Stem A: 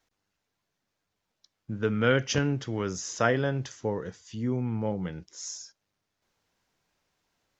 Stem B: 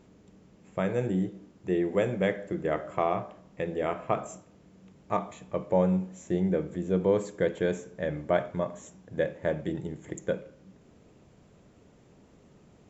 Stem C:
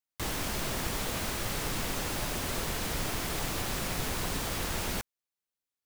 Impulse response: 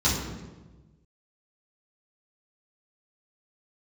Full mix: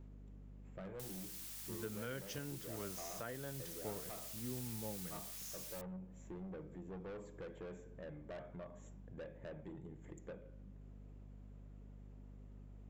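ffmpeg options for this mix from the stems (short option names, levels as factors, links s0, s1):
-filter_complex "[0:a]volume=0.158[s0];[1:a]equalizer=f=5400:w=0.82:g=-8.5,asoftclip=type=tanh:threshold=0.0398,volume=0.376[s1];[2:a]aderivative,adelay=800,volume=0.531[s2];[s1][s2]amix=inputs=2:normalize=0,aeval=exprs='val(0)+0.00251*(sin(2*PI*50*n/s)+sin(2*PI*2*50*n/s)/2+sin(2*PI*3*50*n/s)/3+sin(2*PI*4*50*n/s)/4+sin(2*PI*5*50*n/s)/5)':c=same,acompressor=threshold=0.00251:ratio=2,volume=1[s3];[s0][s3]amix=inputs=2:normalize=0,alimiter=level_in=2.37:limit=0.0631:level=0:latency=1:release=474,volume=0.422"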